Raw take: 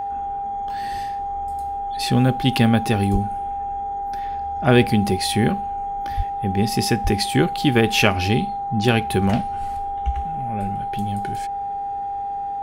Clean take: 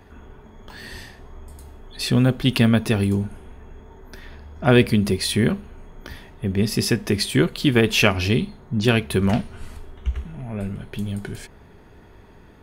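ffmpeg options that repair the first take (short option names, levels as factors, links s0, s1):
-filter_complex "[0:a]bandreject=f=434.5:t=h:w=4,bandreject=f=869:t=h:w=4,bandreject=f=1303.5:t=h:w=4,bandreject=f=800:w=30,asplit=3[s0][s1][s2];[s0]afade=t=out:st=3.12:d=0.02[s3];[s1]highpass=f=140:w=0.5412,highpass=f=140:w=1.3066,afade=t=in:st=3.12:d=0.02,afade=t=out:st=3.24:d=0.02[s4];[s2]afade=t=in:st=3.24:d=0.02[s5];[s3][s4][s5]amix=inputs=3:normalize=0,asplit=3[s6][s7][s8];[s6]afade=t=out:st=6.16:d=0.02[s9];[s7]highpass=f=140:w=0.5412,highpass=f=140:w=1.3066,afade=t=in:st=6.16:d=0.02,afade=t=out:st=6.28:d=0.02[s10];[s8]afade=t=in:st=6.28:d=0.02[s11];[s9][s10][s11]amix=inputs=3:normalize=0,asplit=3[s12][s13][s14];[s12]afade=t=out:st=7.03:d=0.02[s15];[s13]highpass=f=140:w=0.5412,highpass=f=140:w=1.3066,afade=t=in:st=7.03:d=0.02,afade=t=out:st=7.15:d=0.02[s16];[s14]afade=t=in:st=7.15:d=0.02[s17];[s15][s16][s17]amix=inputs=3:normalize=0"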